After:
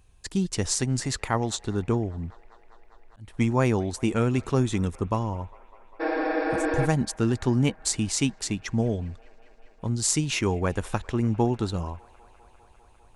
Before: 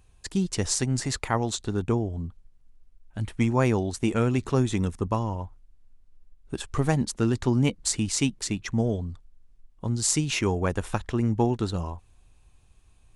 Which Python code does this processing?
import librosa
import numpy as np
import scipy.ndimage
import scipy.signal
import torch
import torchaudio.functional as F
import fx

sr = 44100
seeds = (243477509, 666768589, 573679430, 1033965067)

y = fx.spec_repair(x, sr, seeds[0], start_s=6.03, length_s=0.8, low_hz=270.0, high_hz=5500.0, source='after')
y = fx.echo_wet_bandpass(y, sr, ms=200, feedback_pct=84, hz=1200.0, wet_db=-23)
y = fx.auto_swell(y, sr, attack_ms=340.0, at=(2.1, 3.33), fade=0.02)